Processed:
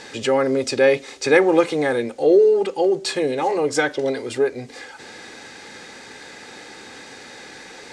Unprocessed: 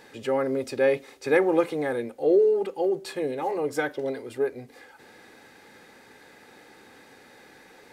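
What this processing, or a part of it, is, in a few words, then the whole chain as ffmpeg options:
parallel compression: -filter_complex "[0:a]lowpass=f=7.8k:w=0.5412,lowpass=f=7.8k:w=1.3066,highshelf=f=3.4k:g=11,asplit=2[a][b];[b]acompressor=threshold=-33dB:ratio=6,volume=-2dB[c];[a][c]amix=inputs=2:normalize=0,volume=4.5dB"

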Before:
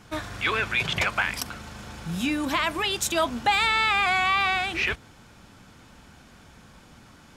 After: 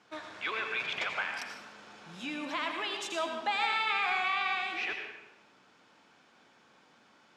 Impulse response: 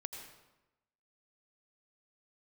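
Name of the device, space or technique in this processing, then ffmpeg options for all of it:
supermarket ceiling speaker: -filter_complex "[0:a]highpass=330,lowpass=5.4k[a];[1:a]atrim=start_sample=2205[b];[a][b]afir=irnorm=-1:irlink=0,volume=-6dB"

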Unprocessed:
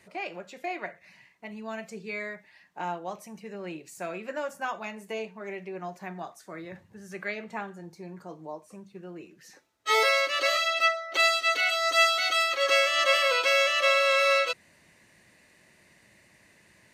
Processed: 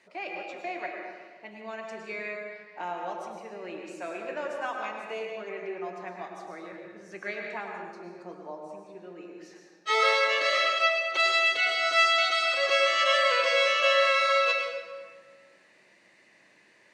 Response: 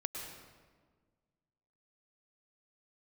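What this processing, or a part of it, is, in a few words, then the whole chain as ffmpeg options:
supermarket ceiling speaker: -filter_complex "[0:a]highpass=290,lowpass=5.8k[a];[1:a]atrim=start_sample=2205[b];[a][b]afir=irnorm=-1:irlink=0"

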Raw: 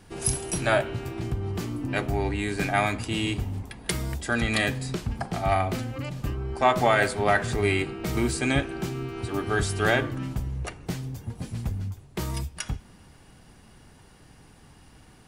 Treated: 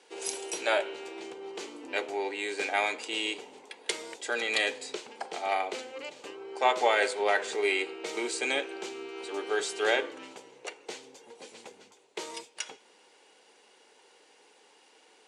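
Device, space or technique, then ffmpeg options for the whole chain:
phone speaker on a table: -af "highpass=f=440:w=0.5412,highpass=f=440:w=1.3066,equalizer=f=460:t=q:w=4:g=4,equalizer=f=670:t=q:w=4:g=-8,equalizer=f=1.2k:t=q:w=4:g=-9,equalizer=f=1.7k:t=q:w=4:g=-6,equalizer=f=5.2k:t=q:w=4:g=-4,lowpass=f=8k:w=0.5412,lowpass=f=8k:w=1.3066,volume=1dB"

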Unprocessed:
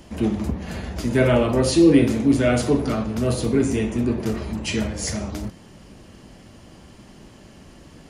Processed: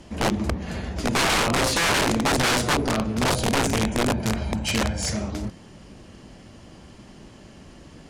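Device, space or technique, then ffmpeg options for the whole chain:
overflowing digital effects unit: -filter_complex "[0:a]asettb=1/sr,asplit=3[a][b][c];[a]atrim=end=3.244[d];[b]atrim=start=3.24:end=5.1,asetpts=PTS-STARTPTS,afade=t=in:d=0.004:c=qsin,afade=t=out:st=1.856:d=0.004:c=qsin,aecho=1:1:1.3:0.56,atrim=end_sample=82026[e];[c]atrim=start=5.096[f];[d][e]acrossfade=d=0.004:c1=hsin:c2=qsin[g];[g][f]acrossfade=d=0.004:c1=qsin:c2=hsin,aeval=exprs='(mod(5.96*val(0)+1,2)-1)/5.96':c=same,lowpass=9.7k"

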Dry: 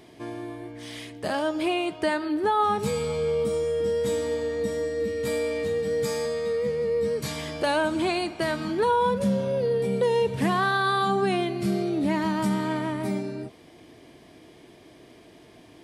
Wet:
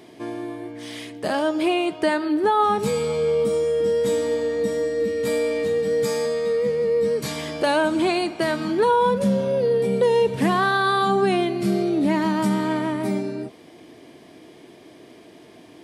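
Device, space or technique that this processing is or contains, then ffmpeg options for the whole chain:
filter by subtraction: -filter_complex "[0:a]asplit=2[a][b];[b]lowpass=260,volume=-1[c];[a][c]amix=inputs=2:normalize=0,volume=3dB"

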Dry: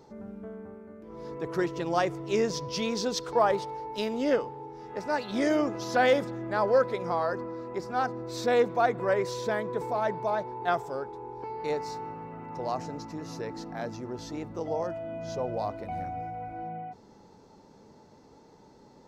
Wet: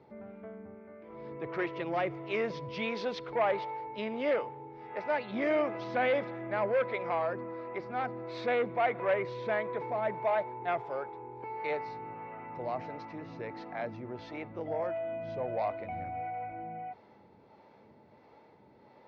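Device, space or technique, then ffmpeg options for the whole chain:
guitar amplifier with harmonic tremolo: -filter_complex "[0:a]acrossover=split=400[a][b];[a]aeval=exprs='val(0)*(1-0.5/2+0.5/2*cos(2*PI*1.5*n/s))':c=same[c];[b]aeval=exprs='val(0)*(1-0.5/2-0.5/2*cos(2*PI*1.5*n/s))':c=same[d];[c][d]amix=inputs=2:normalize=0,asoftclip=type=tanh:threshold=-23dB,highpass=89,equalizer=f=170:t=q:w=4:g=-6,equalizer=f=270:t=q:w=4:g=-4,equalizer=f=420:t=q:w=4:g=-3,equalizer=f=620:t=q:w=4:g=4,equalizer=f=2.2k:t=q:w=4:g=9,lowpass=f=3.5k:w=0.5412,lowpass=f=3.5k:w=1.3066"

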